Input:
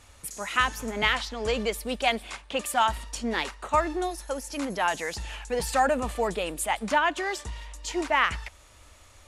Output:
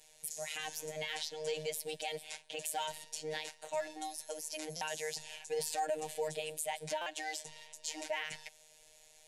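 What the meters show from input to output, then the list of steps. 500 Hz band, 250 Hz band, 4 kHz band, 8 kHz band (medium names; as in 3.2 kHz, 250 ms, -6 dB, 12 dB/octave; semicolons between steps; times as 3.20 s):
-9.5 dB, -19.5 dB, -9.0 dB, -4.5 dB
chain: tone controls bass -9 dB, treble +3 dB; static phaser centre 320 Hz, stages 6; peak limiter -23 dBFS, peak gain reduction 10 dB; robot voice 155 Hz; buffer glitch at 4.76/7.01 s, samples 256, times 8; trim -3 dB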